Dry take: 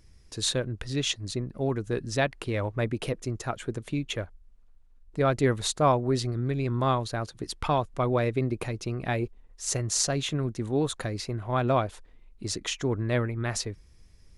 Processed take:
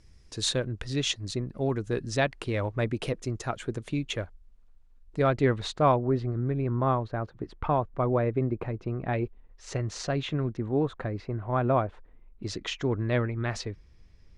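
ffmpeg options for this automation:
-af "asetnsamples=n=441:p=0,asendcmd='5.27 lowpass f 3500;5.96 lowpass f 1500;9.13 lowpass f 2900;10.57 lowpass f 1700;12.43 lowpass f 4100',lowpass=8500"

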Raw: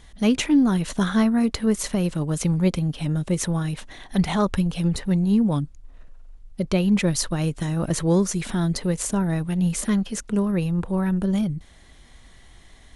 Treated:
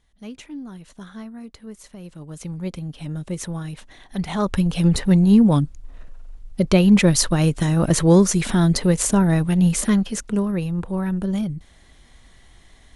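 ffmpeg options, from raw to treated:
-af "volume=2,afade=t=in:st=1.95:d=1.24:silence=0.251189,afade=t=in:st=4.25:d=0.67:silence=0.281838,afade=t=out:st=9.45:d=1.15:silence=0.446684"

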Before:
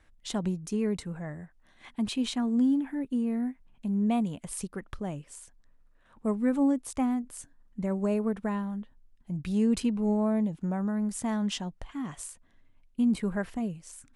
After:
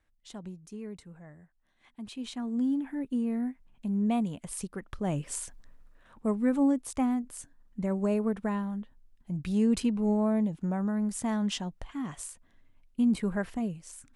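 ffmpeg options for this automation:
-af "volume=3.55,afade=t=in:st=2.03:d=1.04:silence=0.281838,afade=t=in:st=4.97:d=0.37:silence=0.251189,afade=t=out:st=5.34:d=0.93:silence=0.281838"

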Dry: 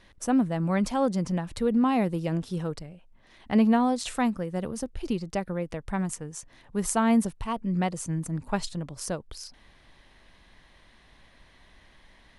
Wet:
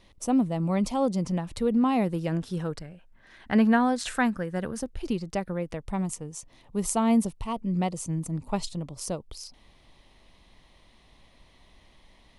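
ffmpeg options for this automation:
-af "asetnsamples=n=441:p=0,asendcmd='1.22 equalizer g -5;2.08 equalizer g 3.5;2.78 equalizer g 10.5;4.79 equalizer g -1;5.79 equalizer g -12.5',equalizer=f=1600:t=o:w=0.44:g=-12.5"

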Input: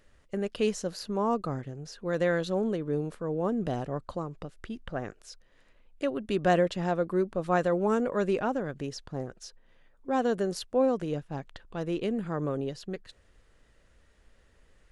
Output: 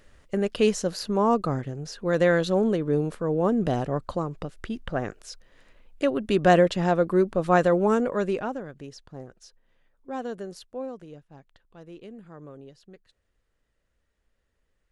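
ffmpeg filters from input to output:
-af "volume=2,afade=t=out:st=7.67:d=1.03:silence=0.266073,afade=t=out:st=10.12:d=1.06:silence=0.421697"

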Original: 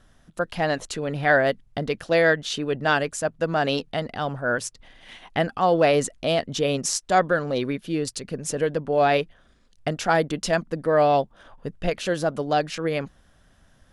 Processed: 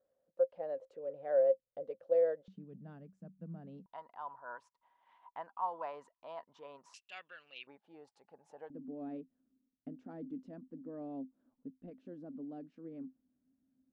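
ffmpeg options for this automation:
-af "asetnsamples=n=441:p=0,asendcmd='2.48 bandpass f 190;3.86 bandpass f 970;6.94 bandpass f 2700;7.67 bandpass f 830;8.7 bandpass f 260',bandpass=f=530:t=q:w=18:csg=0"

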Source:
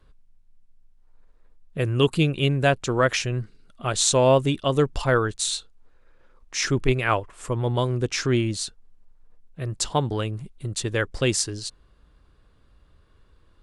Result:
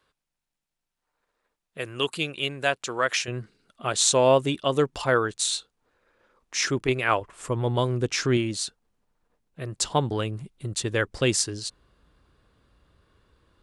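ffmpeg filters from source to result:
-af "asetnsamples=n=441:p=0,asendcmd='3.28 highpass f 250;7.21 highpass f 89;8.37 highpass f 200;9.81 highpass f 92',highpass=f=930:p=1"

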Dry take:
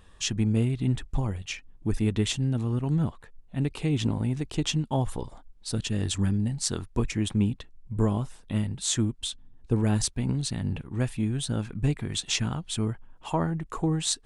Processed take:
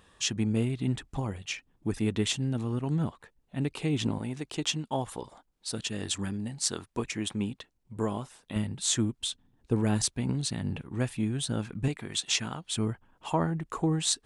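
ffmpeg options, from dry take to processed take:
-af "asetnsamples=n=441:p=0,asendcmd='4.19 highpass f 390;8.56 highpass f 140;11.88 highpass f 400;12.75 highpass f 110',highpass=f=180:p=1"

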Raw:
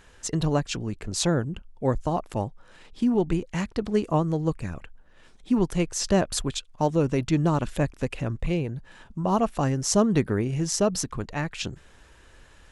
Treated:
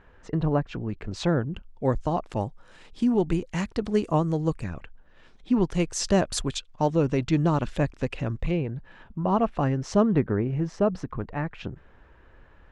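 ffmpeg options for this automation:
-af "asetnsamples=n=441:p=0,asendcmd='0.89 lowpass f 3000;1.52 lowpass f 5800;2.41 lowpass f 10000;4.64 lowpass f 4600;5.74 lowpass f 9100;6.58 lowpass f 5500;8.51 lowpass f 2800;10.15 lowpass f 1700',lowpass=1700"

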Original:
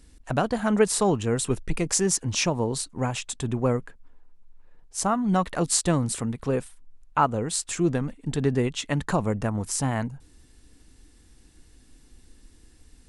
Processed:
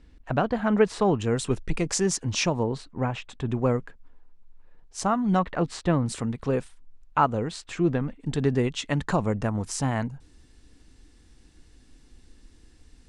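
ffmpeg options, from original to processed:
-af "asetnsamples=n=441:p=0,asendcmd='1.2 lowpass f 6400;2.63 lowpass f 2600;3.5 lowpass f 5800;5.39 lowpass f 2600;6.07 lowpass f 6200;7.48 lowpass f 3400;8.2 lowpass f 6900',lowpass=3100"

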